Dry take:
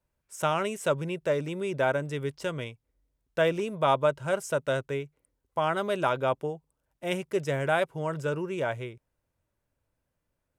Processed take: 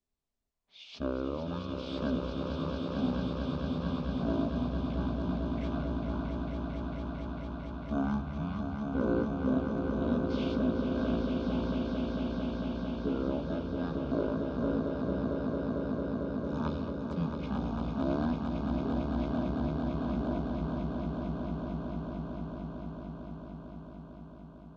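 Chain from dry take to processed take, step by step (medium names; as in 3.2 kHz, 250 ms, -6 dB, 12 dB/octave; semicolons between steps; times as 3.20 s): on a send: echo with a slow build-up 96 ms, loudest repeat 5, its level -6 dB; on the sum: speed mistake 78 rpm record played at 33 rpm; trim -8 dB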